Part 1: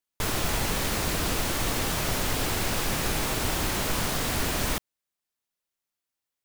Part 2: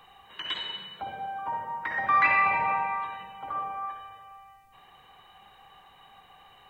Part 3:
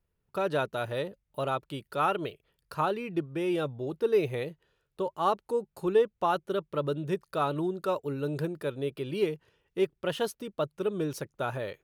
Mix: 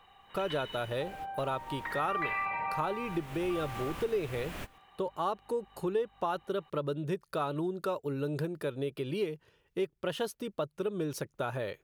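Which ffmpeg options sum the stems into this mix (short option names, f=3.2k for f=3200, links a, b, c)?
-filter_complex "[0:a]highshelf=f=3.6k:t=q:w=1.5:g=-7,aeval=exprs='val(0)+0.00282*(sin(2*PI*50*n/s)+sin(2*PI*2*50*n/s)/2+sin(2*PI*3*50*n/s)/3+sin(2*PI*4*50*n/s)/4+sin(2*PI*5*50*n/s)/5)':c=same,volume=-11.5dB,afade=t=in:st=3.02:d=0.61:silence=0.281838[a];[1:a]highshelf=f=9.1k:g=-9.5,volume=-5dB[b];[2:a]volume=2dB,asplit=2[c][d];[d]apad=whole_len=284281[e];[a][e]sidechaingate=range=-24dB:threshold=-52dB:ratio=16:detection=peak[f];[f][b][c]amix=inputs=3:normalize=0,acompressor=threshold=-32dB:ratio=2.5"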